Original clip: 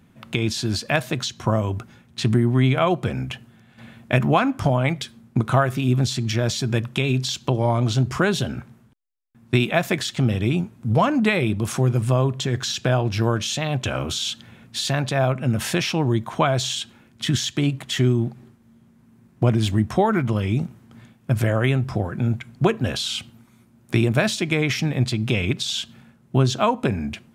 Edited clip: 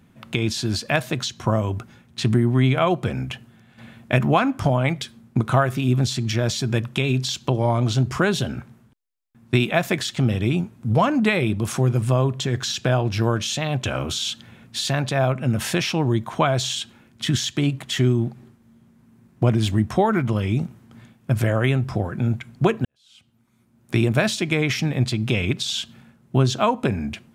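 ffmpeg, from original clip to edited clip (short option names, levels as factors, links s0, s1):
-filter_complex "[0:a]asplit=2[s0][s1];[s0]atrim=end=22.85,asetpts=PTS-STARTPTS,afade=t=out:st=22.846:d=0.004:c=hsin[s2];[s1]atrim=start=22.85,asetpts=PTS-STARTPTS,afade=t=in:d=1.17:c=qua[s3];[s2][s3]concat=n=2:v=0:a=1"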